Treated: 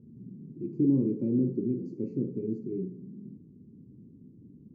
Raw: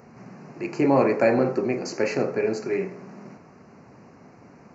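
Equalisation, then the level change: inverse Chebyshev low-pass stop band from 630 Hz, stop band 40 dB; 0.0 dB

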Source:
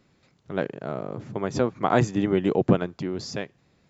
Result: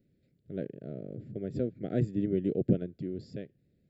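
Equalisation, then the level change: Butterworth band-stop 930 Hz, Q 1.2; bell 2700 Hz -15 dB 2 oct; fixed phaser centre 2700 Hz, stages 4; -5.0 dB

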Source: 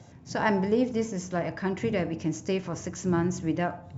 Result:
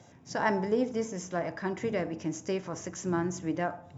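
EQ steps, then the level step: notch 4300 Hz, Q 9.1; dynamic EQ 2700 Hz, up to -6 dB, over -52 dBFS, Q 2.6; low shelf 170 Hz -10.5 dB; -1.0 dB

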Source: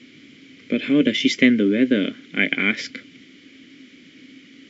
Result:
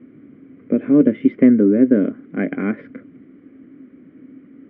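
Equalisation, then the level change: LPF 1200 Hz 24 dB/oct; +4.5 dB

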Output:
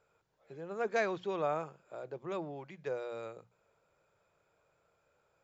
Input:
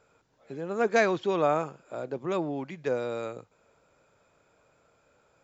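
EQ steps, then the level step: bell 260 Hz -13.5 dB 0.28 oct; high shelf 6400 Hz -5.5 dB; notches 60/120/180/240 Hz; -8.0 dB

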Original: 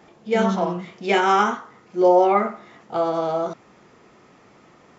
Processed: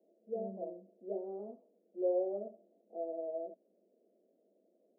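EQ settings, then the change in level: Chebyshev band-pass 190–650 Hz, order 5; differentiator; +7.5 dB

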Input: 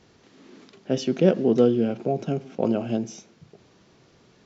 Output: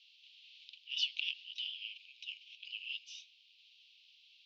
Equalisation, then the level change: steep high-pass 2700 Hz 72 dB/oct; LPF 5000 Hz 12 dB/oct; air absorption 380 m; +15.0 dB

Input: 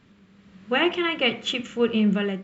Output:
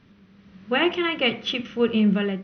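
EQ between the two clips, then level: brick-wall FIR low-pass 6200 Hz; low shelf 180 Hz +3.5 dB; 0.0 dB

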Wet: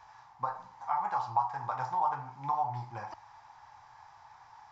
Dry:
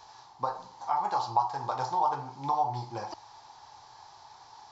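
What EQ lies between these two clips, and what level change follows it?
bell 380 Hz -12.5 dB 1.5 oct; resonant high shelf 2800 Hz -10 dB, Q 1.5; notch 4300 Hz, Q 15; 0.0 dB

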